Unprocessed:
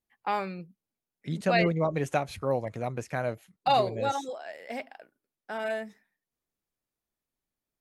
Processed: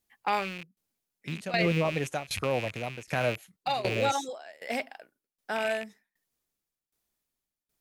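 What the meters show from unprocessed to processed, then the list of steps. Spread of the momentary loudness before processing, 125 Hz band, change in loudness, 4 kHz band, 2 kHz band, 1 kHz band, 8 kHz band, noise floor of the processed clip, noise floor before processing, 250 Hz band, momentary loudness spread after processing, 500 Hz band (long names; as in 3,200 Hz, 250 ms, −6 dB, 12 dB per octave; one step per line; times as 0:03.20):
15 LU, −0.5 dB, −0.5 dB, +3.0 dB, +2.5 dB, −2.5 dB, +6.0 dB, below −85 dBFS, below −85 dBFS, −1.0 dB, 15 LU, −1.5 dB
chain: loose part that buzzes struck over −42 dBFS, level −28 dBFS
shaped tremolo saw down 1.3 Hz, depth 90%
high-shelf EQ 2,700 Hz +7 dB
brickwall limiter −21 dBFS, peak gain reduction 11.5 dB
level +5 dB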